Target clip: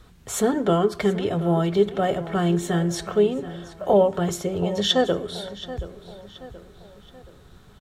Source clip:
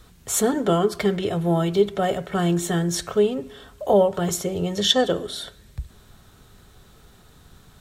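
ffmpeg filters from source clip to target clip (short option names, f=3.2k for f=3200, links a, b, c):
-filter_complex "[0:a]highshelf=f=5k:g=-8.5,asplit=2[a][b];[b]adelay=727,lowpass=f=4.8k:p=1,volume=-14.5dB,asplit=2[c][d];[d]adelay=727,lowpass=f=4.8k:p=1,volume=0.46,asplit=2[e][f];[f]adelay=727,lowpass=f=4.8k:p=1,volume=0.46,asplit=2[g][h];[h]adelay=727,lowpass=f=4.8k:p=1,volume=0.46[i];[c][e][g][i]amix=inputs=4:normalize=0[j];[a][j]amix=inputs=2:normalize=0"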